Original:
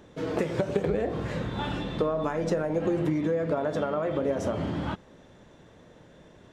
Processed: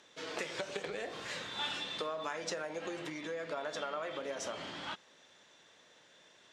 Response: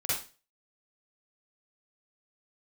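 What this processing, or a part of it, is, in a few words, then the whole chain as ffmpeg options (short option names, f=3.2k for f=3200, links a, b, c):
piezo pickup straight into a mixer: -filter_complex "[0:a]lowpass=5.1k,aderivative,asettb=1/sr,asplit=3[a][b][c];[a]atrim=end=0.924[d];[b]atrim=start=0.92:end=2.16,asetpts=PTS-STARTPTS,afade=t=in:d=0.004:c=qsin,afade=t=out:st=1.236:d=0.004:c=qsin,highshelf=f=7.6k:g=7.5[e];[c]atrim=start=2.156[f];[d][e]acrossfade=d=0.004:c1=hsin:c2=qsin[g];[g][f]acrossfade=d=0.004:c1=qsin:c2=hsin,volume=10dB"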